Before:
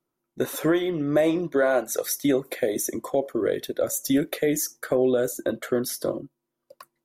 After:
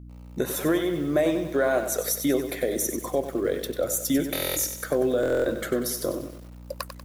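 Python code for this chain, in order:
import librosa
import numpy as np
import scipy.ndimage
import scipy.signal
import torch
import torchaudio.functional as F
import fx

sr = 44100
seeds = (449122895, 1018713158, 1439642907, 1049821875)

y = fx.recorder_agc(x, sr, target_db=-21.0, rise_db_per_s=31.0, max_gain_db=30)
y = fx.high_shelf(y, sr, hz=5800.0, db=4.0)
y = fx.add_hum(y, sr, base_hz=60, snr_db=16)
y = fx.buffer_glitch(y, sr, at_s=(4.33, 5.21), block=1024, repeats=9)
y = fx.echo_crushed(y, sr, ms=95, feedback_pct=55, bits=7, wet_db=-9)
y = y * 10.0 ** (-2.0 / 20.0)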